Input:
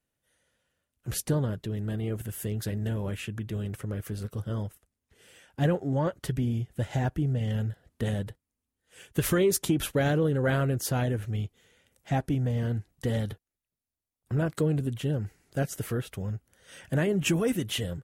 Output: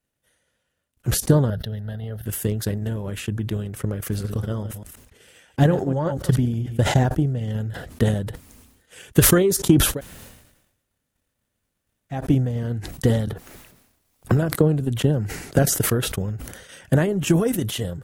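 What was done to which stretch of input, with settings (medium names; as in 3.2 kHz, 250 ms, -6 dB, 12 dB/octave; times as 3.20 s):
1.50–2.26 s: static phaser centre 1.6 kHz, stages 8
3.98–6.93 s: chunks repeated in reverse 122 ms, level -11.5 dB
9.89–12.21 s: room tone, crossfade 0.24 s
13.27–15.59 s: three bands compressed up and down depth 70%
whole clip: dynamic bell 2.4 kHz, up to -6 dB, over -52 dBFS, Q 1.7; transient shaper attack +10 dB, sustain -4 dB; decay stretcher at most 59 dB/s; trim +2 dB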